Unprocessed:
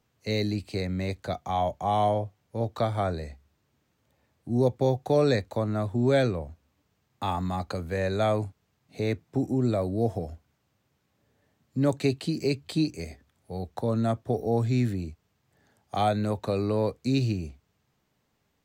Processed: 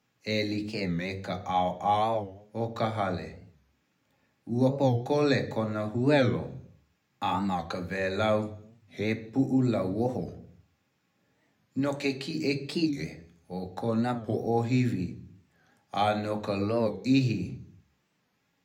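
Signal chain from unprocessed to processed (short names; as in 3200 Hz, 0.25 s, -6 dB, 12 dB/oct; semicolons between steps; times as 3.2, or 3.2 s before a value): 11.79–12.31 low shelf 240 Hz -11.5 dB; reverb RT60 0.55 s, pre-delay 3 ms, DRR 6 dB; record warp 45 rpm, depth 160 cents; gain -4 dB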